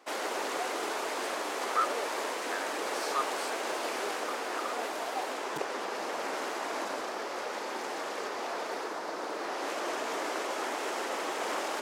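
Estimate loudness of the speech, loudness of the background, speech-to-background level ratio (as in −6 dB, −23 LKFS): −38.5 LKFS, −34.5 LKFS, −4.0 dB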